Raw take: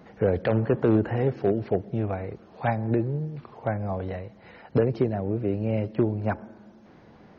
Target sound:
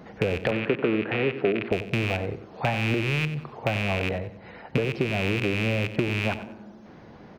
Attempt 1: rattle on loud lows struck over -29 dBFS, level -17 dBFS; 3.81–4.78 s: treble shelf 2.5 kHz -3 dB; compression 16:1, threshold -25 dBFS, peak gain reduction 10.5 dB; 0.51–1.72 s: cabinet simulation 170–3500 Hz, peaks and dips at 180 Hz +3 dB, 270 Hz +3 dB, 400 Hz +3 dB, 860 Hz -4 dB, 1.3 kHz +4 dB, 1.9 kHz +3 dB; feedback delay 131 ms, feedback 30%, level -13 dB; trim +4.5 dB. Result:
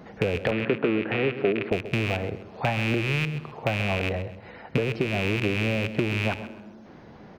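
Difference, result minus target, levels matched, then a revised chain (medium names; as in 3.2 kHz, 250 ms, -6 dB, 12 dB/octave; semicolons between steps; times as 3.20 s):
echo 39 ms late
rattle on loud lows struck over -29 dBFS, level -17 dBFS; 3.81–4.78 s: treble shelf 2.5 kHz -3 dB; compression 16:1, threshold -25 dBFS, peak gain reduction 10.5 dB; 0.51–1.72 s: cabinet simulation 170–3500 Hz, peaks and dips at 180 Hz +3 dB, 270 Hz +3 dB, 400 Hz +3 dB, 860 Hz -4 dB, 1.3 kHz +4 dB, 1.9 kHz +3 dB; feedback delay 92 ms, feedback 30%, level -13 dB; trim +4.5 dB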